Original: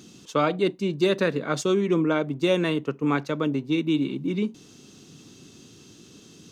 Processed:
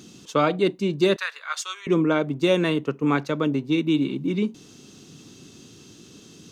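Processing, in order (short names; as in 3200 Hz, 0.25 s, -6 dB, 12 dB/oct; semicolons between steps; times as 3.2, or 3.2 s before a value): 1.16–1.87 HPF 1100 Hz 24 dB/oct; gain +2 dB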